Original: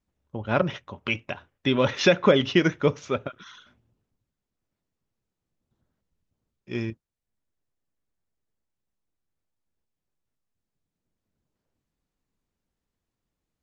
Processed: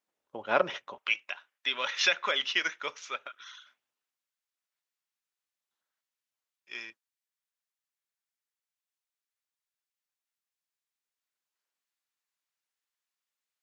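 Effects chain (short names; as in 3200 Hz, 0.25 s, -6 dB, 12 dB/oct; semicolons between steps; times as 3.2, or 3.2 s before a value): HPF 500 Hz 12 dB/oct, from 0.98 s 1400 Hz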